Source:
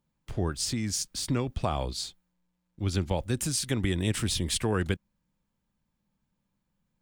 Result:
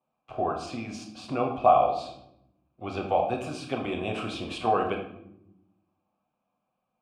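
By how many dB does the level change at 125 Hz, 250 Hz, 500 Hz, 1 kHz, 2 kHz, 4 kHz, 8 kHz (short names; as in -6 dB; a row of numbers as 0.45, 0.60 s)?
-10.0, -2.5, +7.0, +13.5, -0.5, -8.0, -18.5 dB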